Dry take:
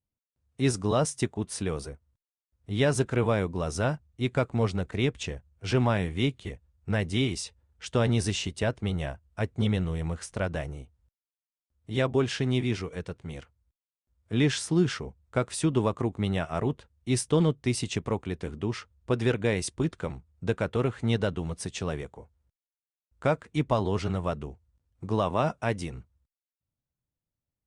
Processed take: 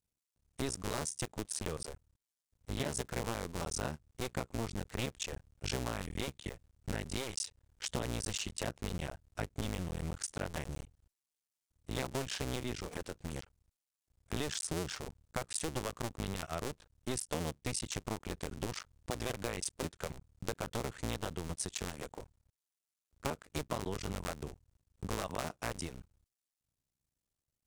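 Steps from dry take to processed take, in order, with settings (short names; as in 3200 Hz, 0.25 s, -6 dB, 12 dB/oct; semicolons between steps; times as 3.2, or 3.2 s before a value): cycle switcher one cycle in 2, muted; bell 8000 Hz +8.5 dB 1.8 oct; compressor 4:1, threshold -36 dBFS, peak gain reduction 14.5 dB; gain +1 dB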